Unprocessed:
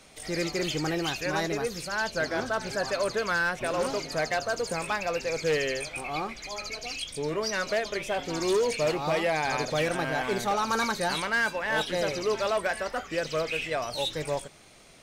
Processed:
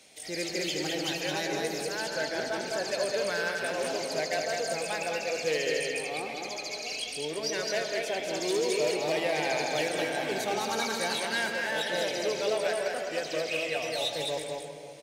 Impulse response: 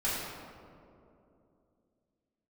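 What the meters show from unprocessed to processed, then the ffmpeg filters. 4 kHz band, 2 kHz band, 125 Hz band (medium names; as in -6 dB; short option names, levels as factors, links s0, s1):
+1.0 dB, -2.5 dB, -7.5 dB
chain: -filter_complex "[0:a]highpass=f=480:p=1,equalizer=f=1200:t=o:w=0.79:g=-12.5,aecho=1:1:210:0.631,asplit=2[s0][s1];[1:a]atrim=start_sample=2205,lowpass=4700,adelay=111[s2];[s1][s2]afir=irnorm=-1:irlink=0,volume=0.2[s3];[s0][s3]amix=inputs=2:normalize=0"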